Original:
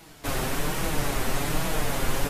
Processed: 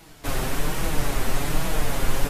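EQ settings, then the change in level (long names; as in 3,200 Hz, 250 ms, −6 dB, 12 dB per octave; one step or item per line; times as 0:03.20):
low-shelf EQ 64 Hz +6.5 dB
0.0 dB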